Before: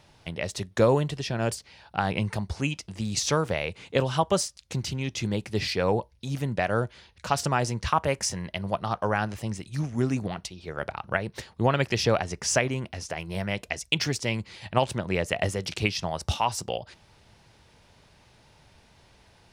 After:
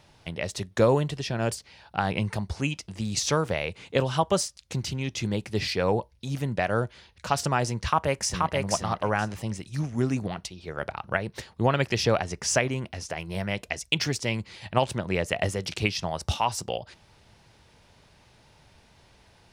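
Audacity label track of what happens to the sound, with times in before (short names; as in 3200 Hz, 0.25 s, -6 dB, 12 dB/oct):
7.850000	8.540000	echo throw 0.48 s, feedback 15%, level -2.5 dB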